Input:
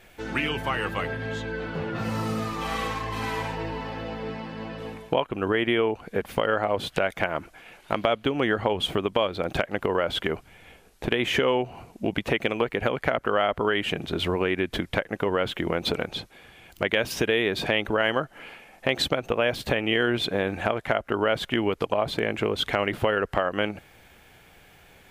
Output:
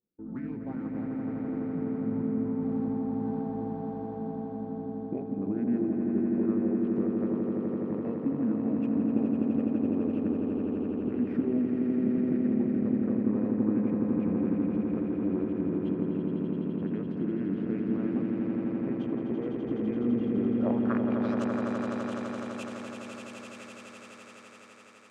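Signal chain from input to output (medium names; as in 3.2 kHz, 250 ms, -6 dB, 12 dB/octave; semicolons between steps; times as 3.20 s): local Wiener filter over 15 samples; gate -48 dBFS, range -24 dB; in parallel at +1 dB: peak limiter -15.5 dBFS, peak gain reduction 10 dB; on the sum: formant shift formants -4 st; band-pass sweep 230 Hz -> 7.5 kHz, 20.38–21.45 s; on a send: echo with a slow build-up 84 ms, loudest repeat 8, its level -6 dB; on the sum: trim -7.5 dB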